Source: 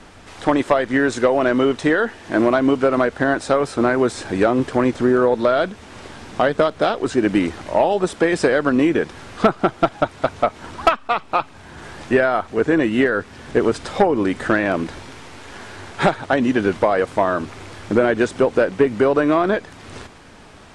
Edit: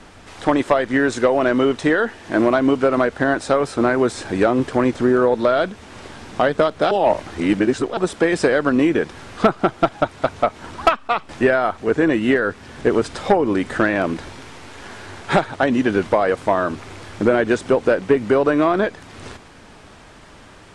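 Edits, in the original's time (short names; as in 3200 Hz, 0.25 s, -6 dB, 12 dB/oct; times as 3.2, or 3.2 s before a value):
6.91–7.97 reverse
11.29–11.99 cut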